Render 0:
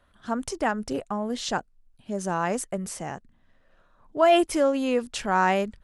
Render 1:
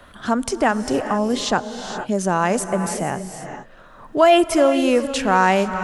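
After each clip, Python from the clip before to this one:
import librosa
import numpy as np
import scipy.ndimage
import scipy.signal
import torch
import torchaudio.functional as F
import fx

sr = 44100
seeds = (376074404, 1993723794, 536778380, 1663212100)

y = fx.rev_gated(x, sr, seeds[0], gate_ms=490, shape='rising', drr_db=10.5)
y = fx.band_squash(y, sr, depth_pct=40)
y = F.gain(torch.from_numpy(y), 7.0).numpy()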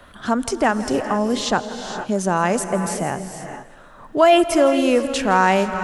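y = fx.echo_feedback(x, sr, ms=165, feedback_pct=50, wet_db=-18)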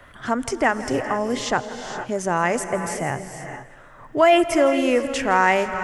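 y = fx.graphic_eq_31(x, sr, hz=(125, 200, 2000, 4000, 10000), db=(9, -8, 8, -7, -4))
y = F.gain(torch.from_numpy(y), -2.0).numpy()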